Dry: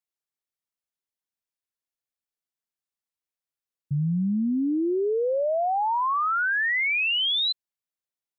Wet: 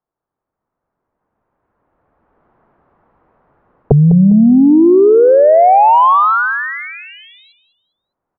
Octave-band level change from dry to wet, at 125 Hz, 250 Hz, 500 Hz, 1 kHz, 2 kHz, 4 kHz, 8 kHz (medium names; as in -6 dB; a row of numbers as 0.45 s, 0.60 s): +17.0 dB, +17.0 dB, +17.0 dB, +16.0 dB, +4.5 dB, under -10 dB, no reading